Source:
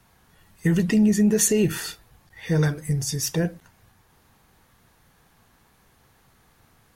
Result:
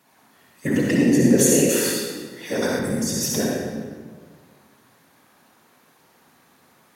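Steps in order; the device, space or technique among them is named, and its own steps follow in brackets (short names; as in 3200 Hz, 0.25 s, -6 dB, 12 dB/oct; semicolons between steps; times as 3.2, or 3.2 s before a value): whispering ghost (whisperiser; HPF 220 Hz 12 dB/oct; reverb RT60 1.7 s, pre-delay 53 ms, DRR -2.5 dB); 1.69–2.79 tone controls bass -8 dB, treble +7 dB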